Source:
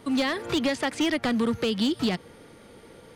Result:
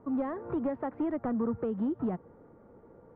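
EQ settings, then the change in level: LPF 1200 Hz 24 dB/oct; -5.5 dB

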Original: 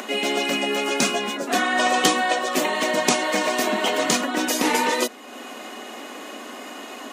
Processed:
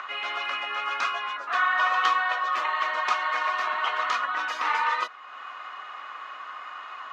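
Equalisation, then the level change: resonant high-pass 1200 Hz, resonance Q 4.9; air absorption 240 m; -5.0 dB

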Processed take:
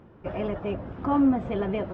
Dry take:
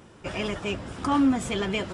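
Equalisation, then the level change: dynamic EQ 630 Hz, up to +6 dB, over -43 dBFS, Q 1.7; tape spacing loss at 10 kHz 43 dB; high shelf 3800 Hz -6.5 dB; +1.0 dB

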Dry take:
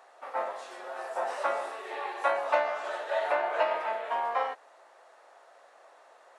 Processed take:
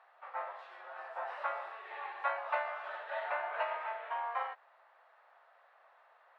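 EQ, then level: HPF 1000 Hz 12 dB/oct; air absorption 410 m; -1.0 dB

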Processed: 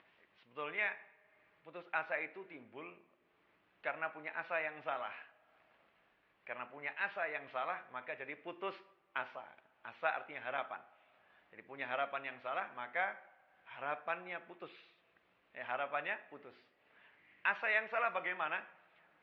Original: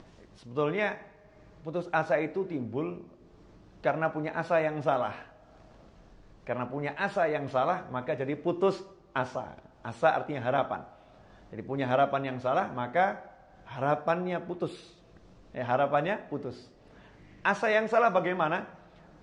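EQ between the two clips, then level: band-pass 2400 Hz, Q 1.9; air absorption 330 m; +3.0 dB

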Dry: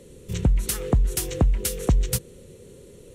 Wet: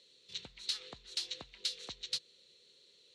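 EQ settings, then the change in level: band-pass 4100 Hz, Q 6.1; air absorption 76 m; +8.5 dB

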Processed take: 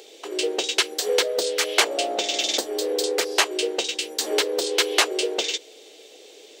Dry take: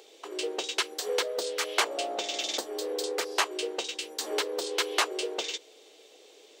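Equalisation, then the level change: bell 1100 Hz -6.5 dB 0.91 oct; +8.5 dB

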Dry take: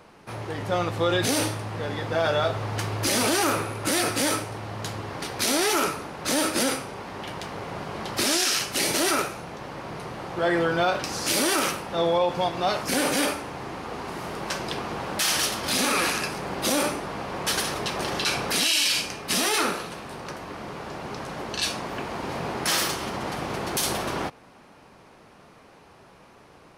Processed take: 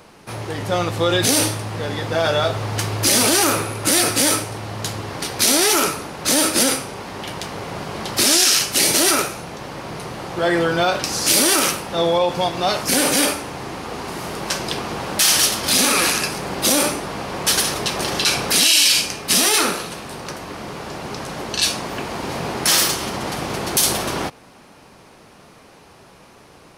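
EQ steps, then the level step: tilt shelf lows +3 dB; high shelf 2600 Hz +12 dB; +2.5 dB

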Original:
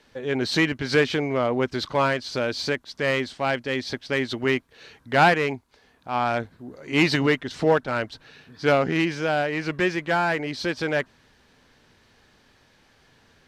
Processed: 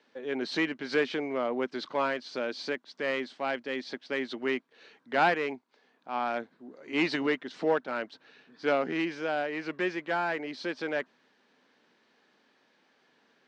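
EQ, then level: HPF 210 Hz 24 dB/oct; air absorption 100 m; -6.5 dB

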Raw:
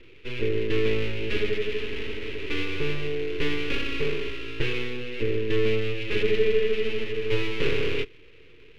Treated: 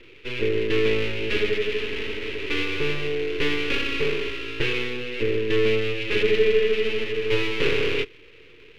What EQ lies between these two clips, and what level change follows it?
low shelf 250 Hz -7 dB; +5.0 dB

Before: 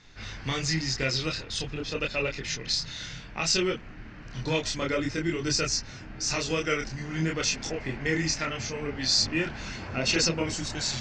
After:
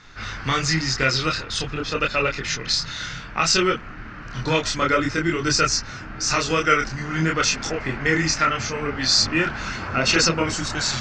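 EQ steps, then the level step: bell 1300 Hz +10.5 dB 0.69 oct; +5.5 dB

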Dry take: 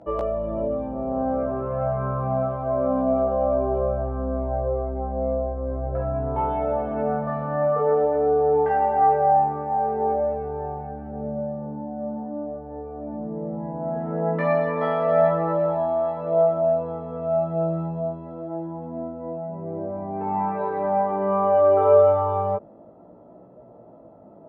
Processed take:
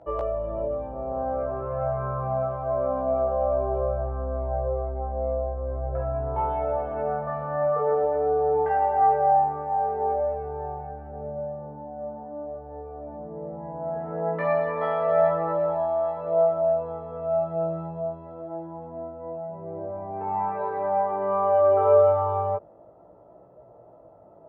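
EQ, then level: bell 230 Hz -14 dB 0.99 oct; high shelf 2800 Hz -8 dB; 0.0 dB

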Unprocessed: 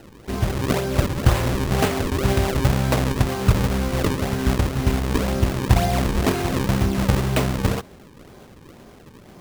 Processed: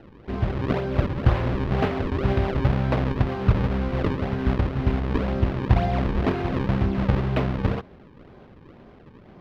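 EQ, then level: air absorption 320 m; -2.0 dB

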